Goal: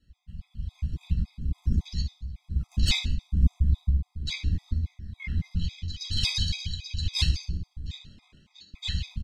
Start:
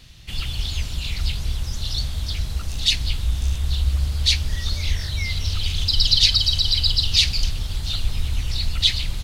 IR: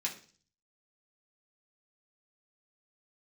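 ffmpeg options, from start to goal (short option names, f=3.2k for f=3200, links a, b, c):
-filter_complex "[0:a]afwtdn=0.0355,tiltshelf=f=1.2k:g=8,asettb=1/sr,asplit=3[a][b][c];[a]atrim=end=1.004[d];[b]atrim=start=1:end=1.8,asetpts=PTS-STARTPTS,afade=t=in:d=0.004:c=qsin,afade=t=out:st=0.796:d=0.004:c=qsin,acontrast=61[e];[c]atrim=start=1.796[f];[d][e]acrossfade=d=0.004:c1=hsin:c2=qsin[g];[g][f]acrossfade=d=0.004:c1=qsin:c2=hsin,asettb=1/sr,asplit=3[h][i][j];[h]atrim=end=2.714[k];[i]atrim=start=2.71:end=3.48,asetpts=PTS-STARTPTS,afade=t=in:d=0.004:c=qsin,afade=t=out:st=0.766:d=0.004:c=qsin,aeval=exprs='1*sin(PI/2*1.58*val(0)/1)':c=same[l];[j]atrim=start=3.476[m];[k][l]acrossfade=d=0.004:c1=hsin:c2=qsin[n];[n][m]acrossfade=d=0.004:c1=qsin:c2=hsin,tremolo=f=1.1:d=0.7,aeval=exprs='(tanh(2.51*val(0)+0.7)-tanh(0.7))/2.51':c=same,asettb=1/sr,asplit=3[o][p][q];[o]atrim=end=7.974[r];[p]atrim=start=7.97:end=8.74,asetpts=PTS-STARTPTS,afade=t=in:d=0.004:c=qsin,afade=t=out:st=0.766:d=0.004:c=qsin,highpass=570,lowpass=6.9k[s];[q]atrim=start=8.736[t];[r][s]acrossfade=d=0.004:c1=hsin:c2=qsin[u];[u][t]acrossfade=d=0.004:c1=qsin:c2=hsin,aecho=1:1:75|150|225:0.237|0.0711|0.0213[v];[1:a]atrim=start_sample=2205[w];[v][w]afir=irnorm=-1:irlink=0,afftfilt=real='re*gt(sin(2*PI*3.6*pts/sr)*(1-2*mod(floor(b*sr/1024/650),2)),0)':imag='im*gt(sin(2*PI*3.6*pts/sr)*(1-2*mod(floor(b*sr/1024/650),2)),0)':win_size=1024:overlap=0.75"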